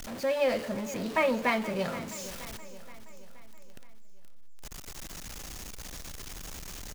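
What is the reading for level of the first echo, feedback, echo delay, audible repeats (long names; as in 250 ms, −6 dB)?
−15.0 dB, 53%, 474 ms, 4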